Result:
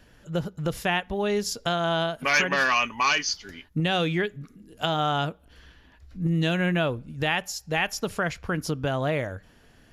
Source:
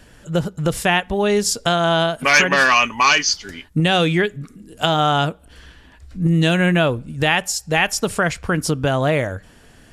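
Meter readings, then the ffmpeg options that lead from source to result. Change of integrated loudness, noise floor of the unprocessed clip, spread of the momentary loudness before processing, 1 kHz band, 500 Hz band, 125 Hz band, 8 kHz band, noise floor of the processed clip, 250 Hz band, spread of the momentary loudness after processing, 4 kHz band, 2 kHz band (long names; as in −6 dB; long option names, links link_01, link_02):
−8.0 dB, −48 dBFS, 9 LU, −8.0 dB, −8.0 dB, −8.0 dB, −11.0 dB, −57 dBFS, −8.0 dB, 9 LU, −8.5 dB, −8.0 dB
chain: -af "equalizer=frequency=8400:width=4:gain=-14,volume=-8dB"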